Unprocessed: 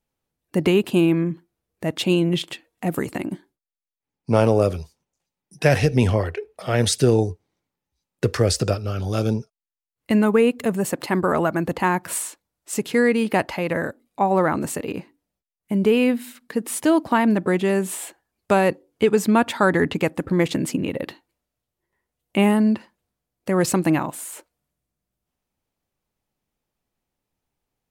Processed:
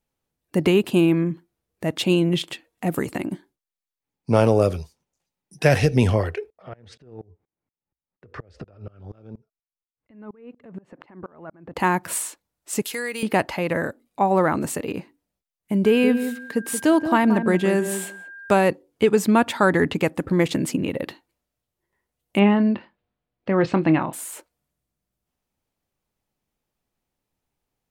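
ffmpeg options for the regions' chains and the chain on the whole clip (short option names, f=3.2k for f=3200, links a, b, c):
-filter_complex "[0:a]asettb=1/sr,asplit=3[a][b][c];[a]atrim=end=6.504[d];[b]atrim=start=6.5:end=11.76,asetpts=PTS-STARTPTS,afade=t=in:d=0.004:c=qsin,afade=t=out:st=5.256:d=0.004:c=qsin,lowpass=1.9k,acompressor=threshold=-28dB:ratio=16:attack=3.2:release=140:knee=1:detection=peak,aeval=exprs='val(0)*pow(10,-26*if(lt(mod(-4.2*n/s,1),2*abs(-4.2)/1000),1-mod(-4.2*n/s,1)/(2*abs(-4.2)/1000),(mod(-4.2*n/s,1)-2*abs(-4.2)/1000)/(1-2*abs(-4.2)/1000))/20)':c=same[e];[c]atrim=start=11.756[f];[d][e]acrossfade=d=0.004:c1=hsin:c2=qsin[g];[g][f]acrossfade=d=0.004:c1=qsin:c2=hsin,asettb=1/sr,asplit=3[h][i][j];[h]atrim=end=12.824[k];[i]atrim=start=12.82:end=13.23,asetpts=PTS-STARTPTS,afade=t=in:d=0.004:c=qsin,afade=t=out:st=0.406:d=0.004:c=qsin,highpass=f=990:p=1,aemphasis=mode=production:type=50kf,acompressor=threshold=-28dB:ratio=2:attack=3.2:release=140:knee=1:detection=peak[l];[j]atrim=start=13.226[m];[k][l]acrossfade=d=0.004:c1=hsin:c2=qsin[n];[n][m]acrossfade=d=0.004:c1=qsin:c2=hsin,asettb=1/sr,asplit=3[o][p][q];[o]atrim=end=15.854[r];[p]atrim=start=15.85:end=18.57,asetpts=PTS-STARTPTS,afade=t=in:d=0.004:c=qsin,afade=t=out:st=2.716:d=0.004:c=qsin,aeval=exprs='val(0)+0.0141*sin(2*PI*1600*n/s)':c=same,asplit=2[s][t];[t]adelay=177,lowpass=f=910:p=1,volume=-8dB,asplit=2[u][v];[v]adelay=177,lowpass=f=910:p=1,volume=0.15[w];[s][u][w]amix=inputs=3:normalize=0,atrim=end_sample=119952[x];[q]atrim=start=18.566[y];[r][x]acrossfade=d=0.004:c1=hsin:c2=qsin[z];[z][y]acrossfade=d=0.004:c1=qsin:c2=hsin,asettb=1/sr,asplit=3[aa][ab][ac];[aa]atrim=end=22.394[ad];[ab]atrim=start=22.39:end=24.13,asetpts=PTS-STARTPTS,afade=t=in:d=0.004:c=qsin,afade=t=out:st=1.736:d=0.004:c=qsin,lowpass=f=3.7k:w=0.5412,lowpass=f=3.7k:w=1.3066,deesser=0.35,asplit=2[ae][af];[af]adelay=25,volume=-12dB[ag];[ae][ag]amix=inputs=2:normalize=0,atrim=end_sample=76734[ah];[ac]atrim=start=24.126[ai];[ad][ah]acrossfade=d=0.004:c1=hsin:c2=qsin[aj];[aj][ai]acrossfade=d=0.004:c1=qsin:c2=hsin"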